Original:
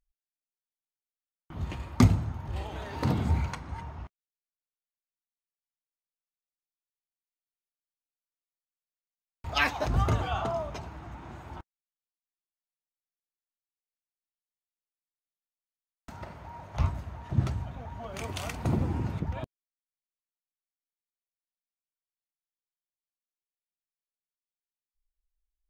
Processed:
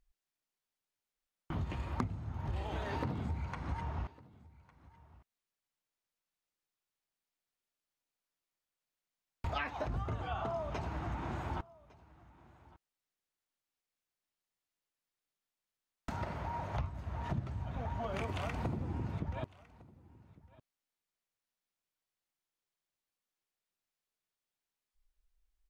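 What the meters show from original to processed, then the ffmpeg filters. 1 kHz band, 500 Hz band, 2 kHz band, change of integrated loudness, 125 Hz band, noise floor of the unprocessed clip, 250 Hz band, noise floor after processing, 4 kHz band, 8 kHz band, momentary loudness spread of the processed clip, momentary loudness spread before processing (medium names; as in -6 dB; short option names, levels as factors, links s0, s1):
-4.5 dB, -5.0 dB, -9.0 dB, -9.0 dB, -8.5 dB, under -85 dBFS, -9.0 dB, under -85 dBFS, -11.0 dB, -14.5 dB, 6 LU, 18 LU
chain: -filter_complex "[0:a]acrossover=split=2900[s0][s1];[s1]acompressor=threshold=0.00316:ratio=4:attack=1:release=60[s2];[s0][s2]amix=inputs=2:normalize=0,highshelf=f=7300:g=-8,acompressor=threshold=0.01:ratio=16,aecho=1:1:1155:0.0794,volume=2.11"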